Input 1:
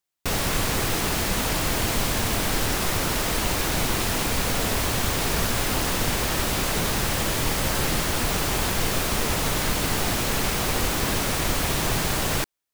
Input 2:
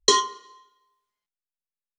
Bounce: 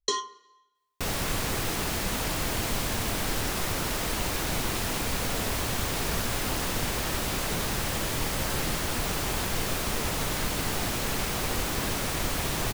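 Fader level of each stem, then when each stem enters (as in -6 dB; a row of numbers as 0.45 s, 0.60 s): -5.0 dB, -10.0 dB; 0.75 s, 0.00 s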